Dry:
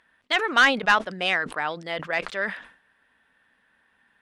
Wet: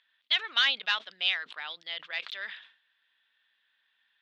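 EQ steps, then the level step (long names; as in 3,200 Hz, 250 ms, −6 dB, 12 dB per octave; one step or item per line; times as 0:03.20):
resonant band-pass 3,600 Hz, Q 3.5
high-frequency loss of the air 72 metres
+6.0 dB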